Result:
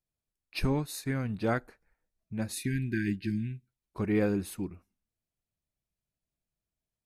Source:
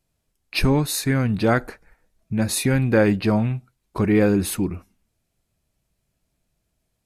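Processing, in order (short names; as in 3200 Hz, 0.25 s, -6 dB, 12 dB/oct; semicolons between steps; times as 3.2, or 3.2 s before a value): spectral delete 2.52–3.69, 390–1500 Hz; upward expander 1.5:1, over -32 dBFS; gain -9 dB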